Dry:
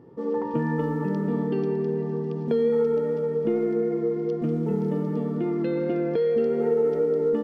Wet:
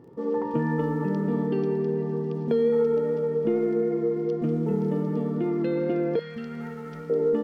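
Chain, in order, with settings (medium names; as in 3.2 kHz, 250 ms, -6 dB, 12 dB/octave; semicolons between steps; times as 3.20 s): crackle 32 per s -52 dBFS; 6.19–7.10 s: FFT filter 200 Hz 0 dB, 400 Hz -23 dB, 1.3 kHz +2 dB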